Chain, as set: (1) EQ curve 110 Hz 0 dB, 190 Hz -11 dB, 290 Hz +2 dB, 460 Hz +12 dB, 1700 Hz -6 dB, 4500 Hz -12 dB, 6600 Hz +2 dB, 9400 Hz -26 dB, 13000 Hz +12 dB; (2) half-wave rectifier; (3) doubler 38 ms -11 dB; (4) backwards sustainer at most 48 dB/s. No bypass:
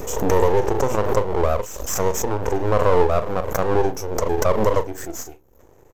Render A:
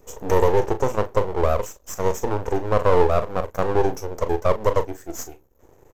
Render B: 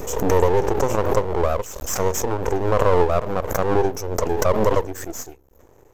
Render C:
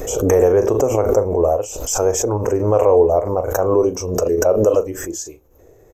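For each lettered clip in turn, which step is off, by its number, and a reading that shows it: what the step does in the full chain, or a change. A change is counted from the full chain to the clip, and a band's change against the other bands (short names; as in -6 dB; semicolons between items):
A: 4, momentary loudness spread change +5 LU; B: 3, crest factor change +2.5 dB; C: 2, distortion 0 dB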